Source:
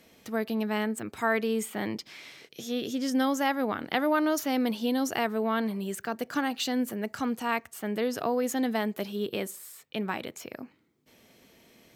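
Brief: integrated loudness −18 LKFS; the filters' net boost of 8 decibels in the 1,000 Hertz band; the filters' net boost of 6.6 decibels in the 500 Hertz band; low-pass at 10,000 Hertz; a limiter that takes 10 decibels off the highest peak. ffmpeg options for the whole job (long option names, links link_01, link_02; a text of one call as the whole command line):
ffmpeg -i in.wav -af "lowpass=10000,equalizer=frequency=500:width_type=o:gain=5.5,equalizer=frequency=1000:width_type=o:gain=8.5,volume=10dB,alimiter=limit=-7dB:level=0:latency=1" out.wav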